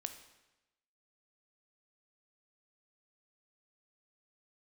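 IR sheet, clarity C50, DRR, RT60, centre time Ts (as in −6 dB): 10.0 dB, 7.5 dB, 1.0 s, 13 ms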